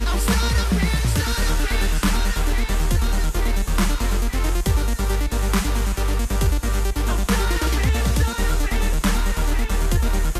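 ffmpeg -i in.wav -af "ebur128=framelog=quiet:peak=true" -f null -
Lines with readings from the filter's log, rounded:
Integrated loudness:
  I:         -22.1 LUFS
  Threshold: -32.0 LUFS
Loudness range:
  LRA:         1.0 LU
  Threshold: -42.2 LUFS
  LRA low:   -22.7 LUFS
  LRA high:  -21.8 LUFS
True peak:
  Peak:       -9.8 dBFS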